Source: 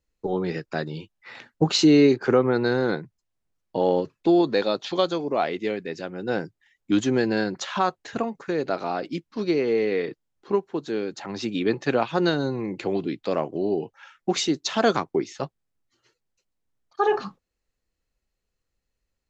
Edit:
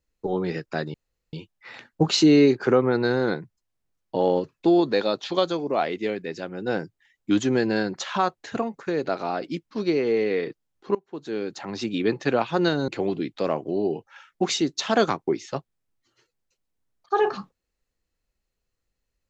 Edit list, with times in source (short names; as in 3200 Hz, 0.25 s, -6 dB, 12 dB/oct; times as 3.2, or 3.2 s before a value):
0.94 insert room tone 0.39 s
10.56–11.07 fade in, from -20.5 dB
12.49–12.75 cut